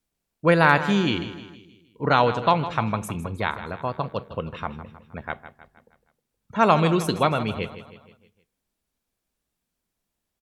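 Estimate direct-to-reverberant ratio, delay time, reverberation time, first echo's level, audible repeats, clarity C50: no reverb, 157 ms, no reverb, -13.0 dB, 4, no reverb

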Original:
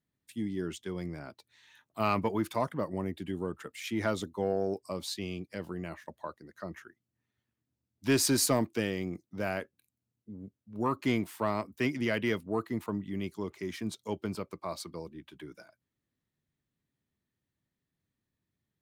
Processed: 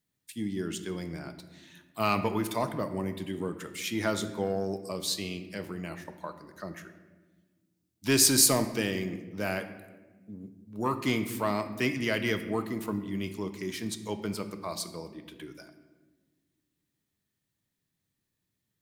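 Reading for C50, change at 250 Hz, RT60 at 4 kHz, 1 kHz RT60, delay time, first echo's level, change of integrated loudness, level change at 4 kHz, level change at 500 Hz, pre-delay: 11.0 dB, +1.0 dB, 0.80 s, 1.1 s, no echo, no echo, +3.5 dB, +6.5 dB, +1.0 dB, 5 ms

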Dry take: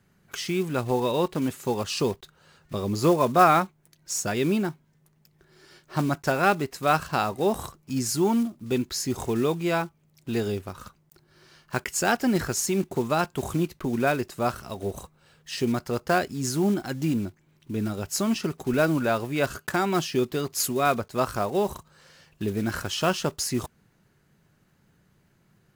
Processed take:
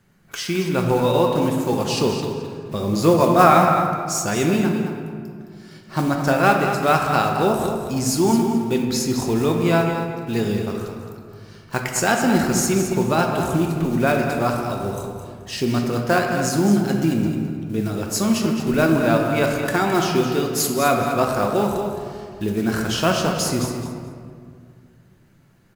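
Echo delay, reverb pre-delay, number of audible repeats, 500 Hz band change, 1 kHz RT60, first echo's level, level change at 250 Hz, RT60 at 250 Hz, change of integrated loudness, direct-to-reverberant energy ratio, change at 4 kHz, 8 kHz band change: 215 ms, 3 ms, 2, +6.0 dB, 1.9 s, -8.5 dB, +7.0 dB, 2.7 s, +6.0 dB, 0.5 dB, +5.5 dB, +5.0 dB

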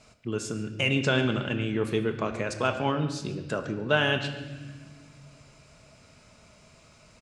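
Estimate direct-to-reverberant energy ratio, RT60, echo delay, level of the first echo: 5.5 dB, 1.4 s, 141 ms, -18.5 dB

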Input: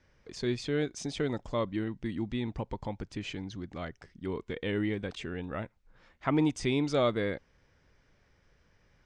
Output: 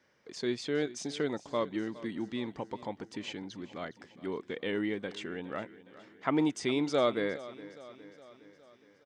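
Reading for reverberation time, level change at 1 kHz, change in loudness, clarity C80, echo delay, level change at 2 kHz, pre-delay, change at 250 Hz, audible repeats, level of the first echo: no reverb, 0.0 dB, -1.0 dB, no reverb, 413 ms, 0.0 dB, no reverb, -1.5 dB, 4, -17.5 dB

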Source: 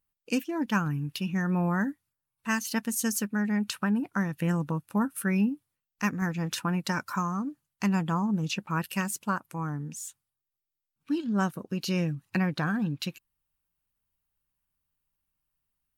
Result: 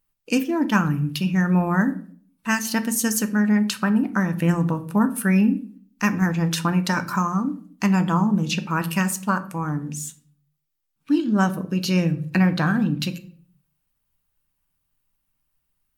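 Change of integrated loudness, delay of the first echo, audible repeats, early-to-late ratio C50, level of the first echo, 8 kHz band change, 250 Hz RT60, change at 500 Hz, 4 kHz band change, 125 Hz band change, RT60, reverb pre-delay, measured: +7.5 dB, no echo, no echo, 15.5 dB, no echo, +7.0 dB, 0.70 s, +7.0 dB, +7.0 dB, +8.0 dB, 0.50 s, 3 ms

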